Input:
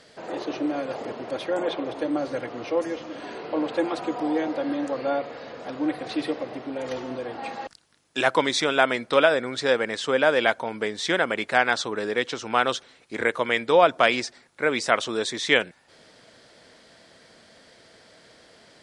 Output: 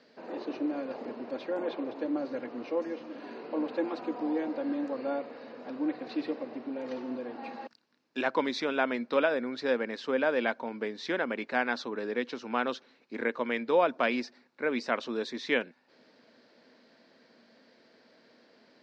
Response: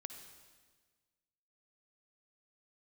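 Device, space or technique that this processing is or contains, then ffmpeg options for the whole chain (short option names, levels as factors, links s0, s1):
kitchen radio: -af "highpass=230,equalizer=f=240:t=q:w=4:g=10,equalizer=f=710:t=q:w=4:g=-4,equalizer=f=1300:t=q:w=4:g=-4,equalizer=f=2000:t=q:w=4:g=-4,equalizer=f=3300:t=q:w=4:g=-9,lowpass=f=4600:w=0.5412,lowpass=f=4600:w=1.3066,volume=0.501"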